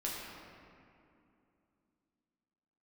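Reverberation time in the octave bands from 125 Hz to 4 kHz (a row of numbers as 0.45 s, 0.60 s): 3.1 s, 3.6 s, 2.8 s, 2.5 s, 2.1 s, 1.4 s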